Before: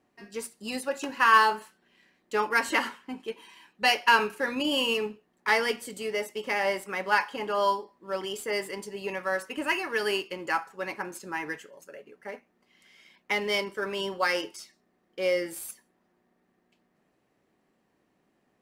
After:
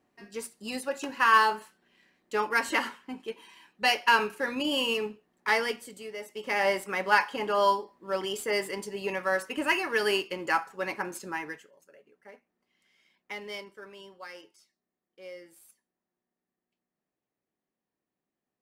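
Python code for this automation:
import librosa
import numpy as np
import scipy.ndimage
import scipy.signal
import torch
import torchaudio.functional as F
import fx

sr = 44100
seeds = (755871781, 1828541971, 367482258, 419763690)

y = fx.gain(x, sr, db=fx.line((5.58, -1.5), (6.16, -9.5), (6.61, 1.5), (11.25, 1.5), (11.79, -11.0), (13.5, -11.0), (14.15, -18.0)))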